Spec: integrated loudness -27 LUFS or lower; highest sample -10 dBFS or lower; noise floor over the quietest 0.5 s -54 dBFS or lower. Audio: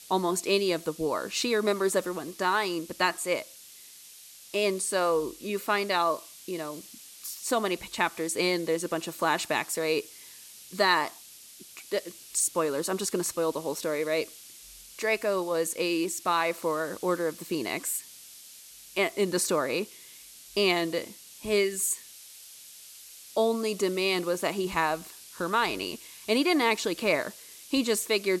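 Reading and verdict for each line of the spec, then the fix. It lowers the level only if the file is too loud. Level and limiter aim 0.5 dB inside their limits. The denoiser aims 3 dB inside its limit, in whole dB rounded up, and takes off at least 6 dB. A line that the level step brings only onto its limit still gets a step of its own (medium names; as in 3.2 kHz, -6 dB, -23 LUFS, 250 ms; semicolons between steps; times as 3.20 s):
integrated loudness -28.5 LUFS: pass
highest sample -10.5 dBFS: pass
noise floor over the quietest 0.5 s -50 dBFS: fail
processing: noise reduction 7 dB, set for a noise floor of -50 dBFS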